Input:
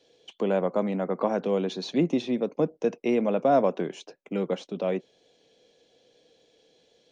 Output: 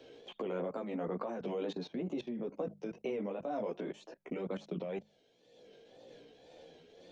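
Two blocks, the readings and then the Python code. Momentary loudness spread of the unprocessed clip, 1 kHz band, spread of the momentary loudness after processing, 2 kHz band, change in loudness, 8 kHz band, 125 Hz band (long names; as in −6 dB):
10 LU, −14.0 dB, 19 LU, −11.5 dB, −12.5 dB, can't be measured, −11.5 dB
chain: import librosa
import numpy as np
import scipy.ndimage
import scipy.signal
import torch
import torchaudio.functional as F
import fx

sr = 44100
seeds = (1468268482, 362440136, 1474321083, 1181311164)

y = fx.chorus_voices(x, sr, voices=2, hz=0.43, base_ms=15, depth_ms=3.9, mix_pct=50)
y = fx.level_steps(y, sr, step_db=20)
y = fx.tremolo_shape(y, sr, shape='triangle', hz=2.0, depth_pct=55)
y = fx.high_shelf(y, sr, hz=4500.0, db=-5.0)
y = fx.hum_notches(y, sr, base_hz=50, count=4)
y = fx.wow_flutter(y, sr, seeds[0], rate_hz=2.1, depth_cents=100.0)
y = fx.band_squash(y, sr, depth_pct=70)
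y = F.gain(torch.from_numpy(y), 6.0).numpy()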